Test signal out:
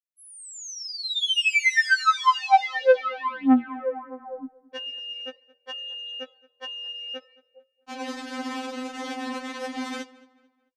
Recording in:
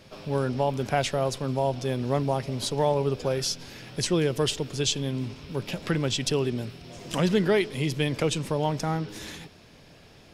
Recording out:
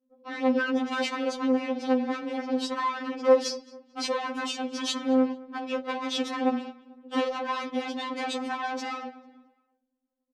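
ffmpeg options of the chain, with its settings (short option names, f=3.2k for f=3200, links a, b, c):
-filter_complex "[0:a]aemphasis=mode=reproduction:type=bsi,agate=range=-15dB:threshold=-27dB:ratio=16:detection=peak,crystalizer=i=1.5:c=0,highshelf=f=2.1k:g=-6.5,acompressor=threshold=-22dB:ratio=16,anlmdn=0.0158,aeval=exprs='0.188*sin(PI/2*2.82*val(0)/0.188)':c=same,aeval=exprs='(tanh(8.91*val(0)+0.25)-tanh(0.25))/8.91':c=same,flanger=delay=8.7:depth=2.1:regen=88:speed=0.37:shape=triangular,highpass=260,lowpass=6.2k,asplit=2[a][b];[b]adelay=221,lowpass=f=3.5k:p=1,volume=-21dB,asplit=2[c][d];[d]adelay=221,lowpass=f=3.5k:p=1,volume=0.4,asplit=2[e][f];[f]adelay=221,lowpass=f=3.5k:p=1,volume=0.4[g];[c][e][g]amix=inputs=3:normalize=0[h];[a][h]amix=inputs=2:normalize=0,afftfilt=real='re*3.46*eq(mod(b,12),0)':imag='im*3.46*eq(mod(b,12),0)':win_size=2048:overlap=0.75,volume=7dB"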